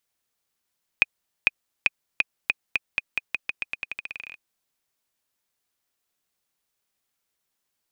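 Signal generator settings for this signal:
bouncing ball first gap 0.45 s, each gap 0.87, 2,490 Hz, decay 27 ms −2.5 dBFS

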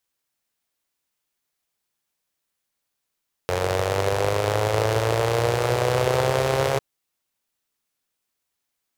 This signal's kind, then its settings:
pulse-train model of a four-cylinder engine, changing speed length 3.30 s, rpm 2,700, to 4,100, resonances 110/480 Hz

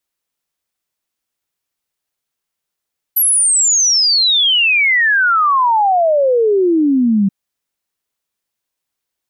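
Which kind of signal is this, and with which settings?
exponential sine sweep 12,000 Hz → 190 Hz 4.13 s −9.5 dBFS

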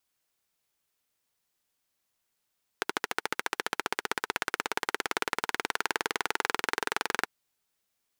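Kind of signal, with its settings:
pulse-train model of a single-cylinder engine, changing speed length 4.44 s, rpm 1,600, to 2,700, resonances 440/900/1,400 Hz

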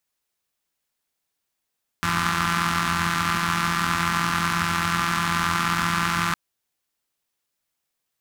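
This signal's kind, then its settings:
pulse-train model of a four-cylinder engine, steady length 4.31 s, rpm 5,100, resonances 95/180/1,200 Hz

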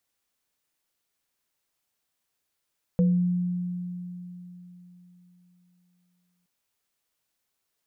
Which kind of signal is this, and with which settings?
inharmonic partials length 3.47 s, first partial 178 Hz, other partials 495 Hz, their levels −8 dB, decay 3.72 s, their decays 0.33 s, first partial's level −17 dB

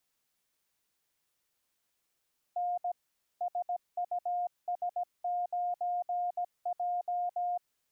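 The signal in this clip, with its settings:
Morse code "N SUS9J" 17 words per minute 710 Hz −29.5 dBFS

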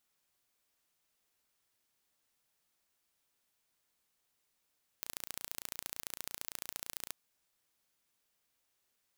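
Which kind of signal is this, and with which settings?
impulse train 28.9 per second, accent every 2, −11 dBFS 2.09 s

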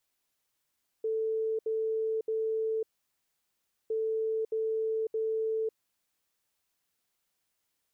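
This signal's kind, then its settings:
beeps in groups sine 442 Hz, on 0.55 s, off 0.07 s, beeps 3, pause 1.07 s, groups 2, −27.5 dBFS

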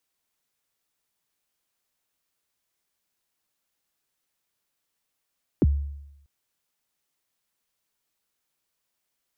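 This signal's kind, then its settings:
synth kick length 0.64 s, from 420 Hz, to 71 Hz, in 32 ms, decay 0.88 s, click off, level −13.5 dB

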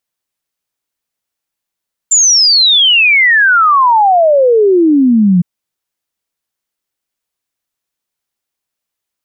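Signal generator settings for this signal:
exponential sine sweep 7,300 Hz → 170 Hz 3.31 s −5 dBFS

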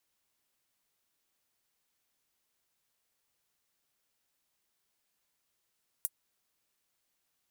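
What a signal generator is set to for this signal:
closed synth hi-hat, high-pass 9,500 Hz, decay 0.05 s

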